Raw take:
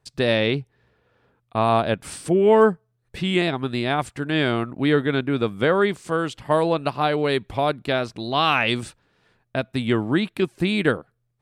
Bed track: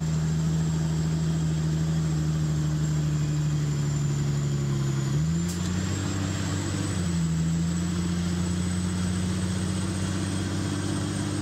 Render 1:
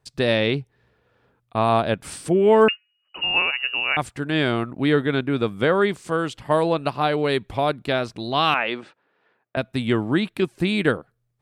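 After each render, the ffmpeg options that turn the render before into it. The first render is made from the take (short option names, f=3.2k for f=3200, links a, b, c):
-filter_complex "[0:a]asettb=1/sr,asplit=3[a][b][c];[a]atrim=end=2.684[d];[b]atrim=start=2.68:end=3.97,asetpts=PTS-STARTPTS,afade=t=in:d=0.004:c=qsin,afade=t=out:st=1.286:d=0.004:c=qsin,lowpass=f=2.6k:t=q:w=0.5098,lowpass=f=2.6k:t=q:w=0.6013,lowpass=f=2.6k:t=q:w=0.9,lowpass=f=2.6k:t=q:w=2.563,afreqshift=-3000[e];[c]atrim=start=3.966[f];[d][e]acrossfade=d=0.004:c1=hsin:c2=qsin[g];[g][f]acrossfade=d=0.004:c1=qsin:c2=hsin,asettb=1/sr,asplit=3[h][i][j];[h]atrim=end=8.544[k];[i]atrim=start=8.54:end=9.57,asetpts=PTS-STARTPTS,afade=t=in:d=0.004:c=qsin,afade=t=out:st=1.026:d=0.004:c=qsin,highpass=350,lowpass=2.3k[l];[j]atrim=start=9.566[m];[k][l]acrossfade=d=0.004:c1=hsin:c2=qsin[n];[n][m]acrossfade=d=0.004:c1=qsin:c2=hsin"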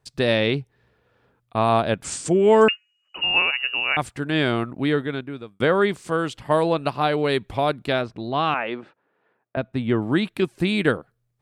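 -filter_complex "[0:a]asettb=1/sr,asplit=3[a][b][c];[a]atrim=end=2.044[d];[b]atrim=start=2.04:end=3.62,asetpts=PTS-STARTPTS,afade=t=in:d=0.004:c=qsin,afade=t=out:st=1.576:d=0.004:c=qsin,lowpass=f=7.1k:t=q:w=4.9[e];[c]atrim=start=3.616[f];[d][e]acrossfade=d=0.004:c1=hsin:c2=qsin[g];[g][f]acrossfade=d=0.004:c1=qsin:c2=hsin,asplit=3[h][i][j];[h]afade=t=out:st=8.01:d=0.02[k];[i]lowpass=f=1.4k:p=1,afade=t=in:st=8.01:d=0.02,afade=t=out:st=10.01:d=0.02[l];[j]afade=t=in:st=10.01:d=0.02[m];[k][l][m]amix=inputs=3:normalize=0,asplit=2[n][o];[n]atrim=end=5.6,asetpts=PTS-STARTPTS,afade=t=out:st=4.69:d=0.91[p];[o]atrim=start=5.6,asetpts=PTS-STARTPTS,afade=t=in:d=0.004:c=hsin[q];[p][q]concat=n=2:v=0:a=1"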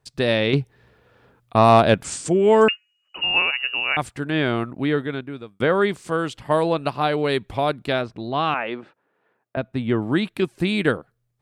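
-filter_complex "[0:a]asettb=1/sr,asplit=3[a][b][c];[a]atrim=end=0.534[d];[b]atrim=start=0.53:end=2.03,asetpts=PTS-STARTPTS,afade=t=in:d=0.004:c=qsin,afade=t=out:st=1.496:d=0.004:c=qsin,acontrast=82[e];[c]atrim=start=2.026[f];[d][e]acrossfade=d=0.004:c1=hsin:c2=qsin[g];[g][f]acrossfade=d=0.004:c1=qsin:c2=hsin,asettb=1/sr,asplit=3[h][i][j];[h]atrim=end=4.264[k];[i]atrim=start=4.26:end=5.7,asetpts=PTS-STARTPTS,afade=t=in:d=0.004:c=qsin,afade=t=out:st=1.436:d=0.004:c=qsin,acrossover=split=3700[l][m];[m]acompressor=threshold=-45dB:ratio=4:attack=1:release=60[n];[l][n]amix=inputs=2:normalize=0[o];[j]atrim=start=5.696[p];[k][o]acrossfade=d=0.004:c1=hsin:c2=qsin[q];[q][p]acrossfade=d=0.004:c1=qsin:c2=hsin"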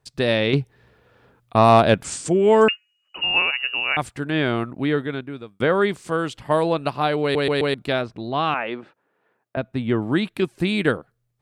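-filter_complex "[0:a]asplit=5[a][b][c][d][e];[a]atrim=end=7.352[f];[b]atrim=start=7.218:end=7.352[g];[c]atrim=start=7.218:end=7.352[h];[d]atrim=start=7.218:end=7.352[i];[e]atrim=start=7.738[j];[f][g]acrossfade=d=0.004:c1=hsin:c2=hsin[k];[k][h]acrossfade=d=0.004:c1=hsin:c2=hsin[l];[l][i]acrossfade=d=0.004:c1=hsin:c2=hsin[m];[m][j]acrossfade=d=0.004:c1=hsin:c2=hsin"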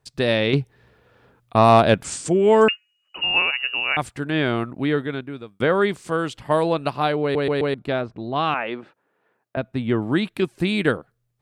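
-filter_complex "[0:a]asettb=1/sr,asplit=3[a][b][c];[a]atrim=end=7.124[d];[b]atrim=start=7.12:end=8.36,asetpts=PTS-STARTPTS,afade=t=in:d=0.004:c=qsin,afade=t=out:st=1.236:d=0.004:c=qsin,highshelf=f=2.6k:g=-10.5[e];[c]atrim=start=8.356[f];[d][e]acrossfade=d=0.004:c1=hsin:c2=qsin[g];[g][f]acrossfade=d=0.004:c1=qsin:c2=hsin"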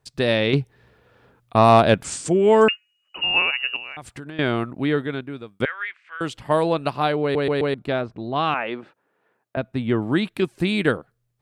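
-filter_complex "[0:a]asettb=1/sr,asplit=3[a][b][c];[a]atrim=end=3.764[d];[b]atrim=start=3.76:end=4.39,asetpts=PTS-STARTPTS,afade=t=in:d=0.004:c=qsin,afade=t=out:st=0.626:d=0.004:c=qsin,acompressor=threshold=-31dB:ratio=10:attack=3.2:release=140:knee=1:detection=peak[e];[c]atrim=start=4.386[f];[d][e]acrossfade=d=0.004:c1=hsin:c2=qsin[g];[g][f]acrossfade=d=0.004:c1=qsin:c2=hsin,asettb=1/sr,asplit=3[h][i][j];[h]atrim=end=5.654[k];[i]atrim=start=5.65:end=6.21,asetpts=PTS-STARTPTS,afade=t=in:d=0.004:c=qsin,afade=t=out:st=0.556:d=0.004:c=qsin,asuperpass=centerf=2000:order=4:qfactor=1.8[l];[j]atrim=start=6.206[m];[k][l]acrossfade=d=0.004:c1=hsin:c2=qsin[n];[n][m]acrossfade=d=0.004:c1=qsin:c2=hsin"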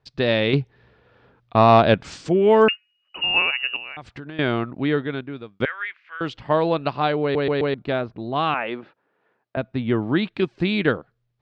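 -af "lowpass=f=4.9k:w=0.5412,lowpass=f=4.9k:w=1.3066"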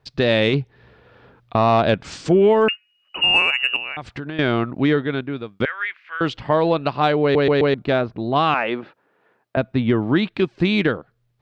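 -af "alimiter=limit=-12.5dB:level=0:latency=1:release=378,acontrast=51"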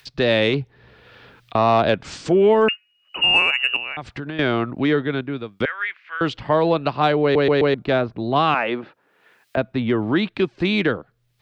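-filter_complex "[0:a]acrossover=split=260|610|1900[a][b][c][d];[a]alimiter=limit=-21.5dB:level=0:latency=1[e];[d]acompressor=mode=upward:threshold=-39dB:ratio=2.5[f];[e][b][c][f]amix=inputs=4:normalize=0"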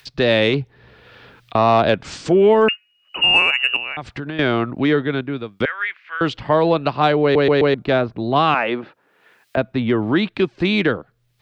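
-af "volume=2dB"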